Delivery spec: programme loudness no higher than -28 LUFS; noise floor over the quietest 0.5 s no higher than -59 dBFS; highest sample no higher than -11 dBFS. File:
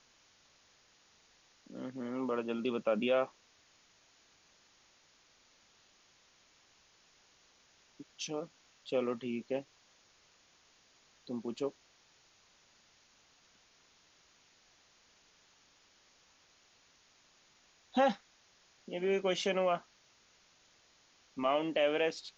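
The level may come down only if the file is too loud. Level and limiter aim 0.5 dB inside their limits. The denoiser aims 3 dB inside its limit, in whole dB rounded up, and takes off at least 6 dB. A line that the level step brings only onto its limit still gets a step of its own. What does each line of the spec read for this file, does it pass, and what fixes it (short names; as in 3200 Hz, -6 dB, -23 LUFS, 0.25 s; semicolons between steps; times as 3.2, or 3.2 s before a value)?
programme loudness -35.0 LUFS: OK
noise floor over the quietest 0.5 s -67 dBFS: OK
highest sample -18.0 dBFS: OK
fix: none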